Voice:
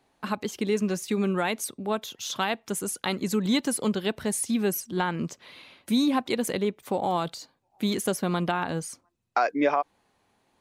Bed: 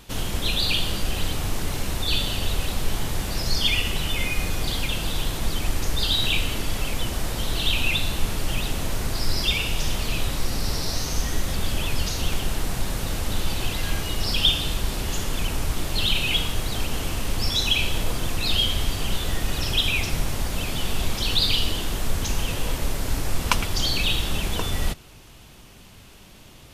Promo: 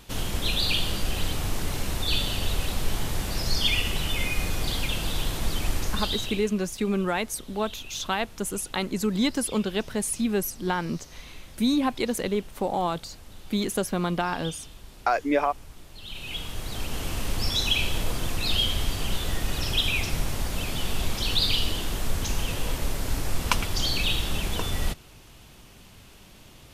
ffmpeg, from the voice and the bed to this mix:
-filter_complex "[0:a]adelay=5700,volume=0dB[a];[1:a]volume=16dB,afade=t=out:st=5.75:d=0.74:silence=0.11885,afade=t=in:st=16.02:d=1.19:silence=0.125893[b];[a][b]amix=inputs=2:normalize=0"

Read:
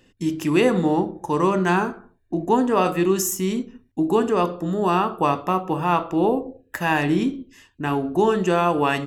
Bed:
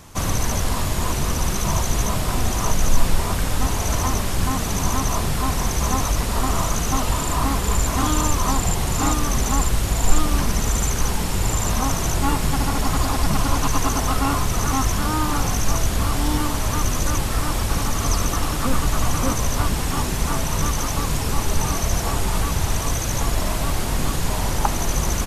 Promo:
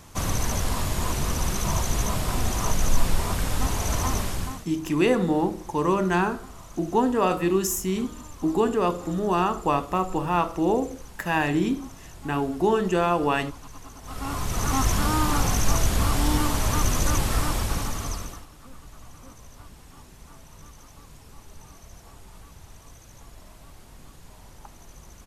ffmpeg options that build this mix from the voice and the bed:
-filter_complex "[0:a]adelay=4450,volume=-3dB[a];[1:a]volume=17.5dB,afade=t=out:st=4.21:d=0.45:silence=0.112202,afade=t=in:st=14.02:d=0.88:silence=0.0841395,afade=t=out:st=17.33:d=1.13:silence=0.0630957[b];[a][b]amix=inputs=2:normalize=0"

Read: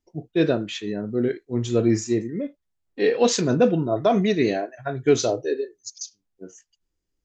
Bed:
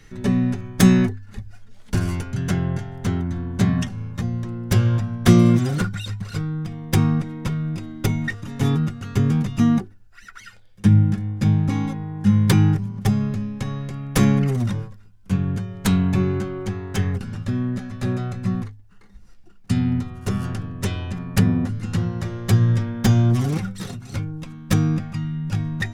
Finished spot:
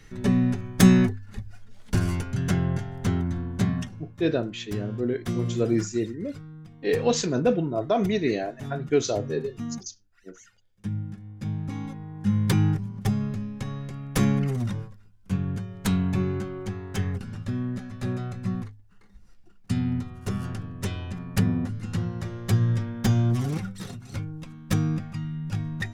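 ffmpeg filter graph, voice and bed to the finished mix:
-filter_complex "[0:a]adelay=3850,volume=-4dB[a];[1:a]volume=9dB,afade=t=out:st=3.28:d=0.88:silence=0.188365,afade=t=in:st=11.19:d=1.47:silence=0.281838[b];[a][b]amix=inputs=2:normalize=0"

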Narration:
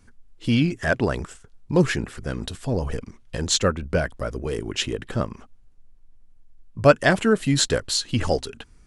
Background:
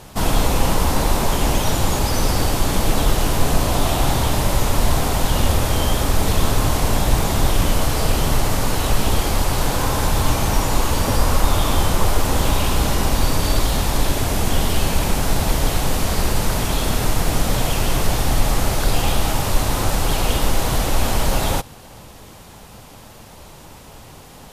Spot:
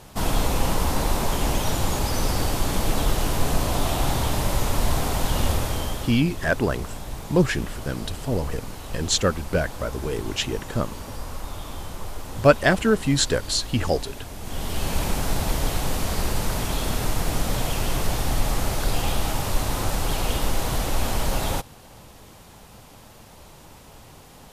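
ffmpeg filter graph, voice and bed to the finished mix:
-filter_complex "[0:a]adelay=5600,volume=-0.5dB[a];[1:a]volume=6.5dB,afade=t=out:st=5.49:d=0.73:silence=0.251189,afade=t=in:st=14.4:d=0.58:silence=0.266073[b];[a][b]amix=inputs=2:normalize=0"

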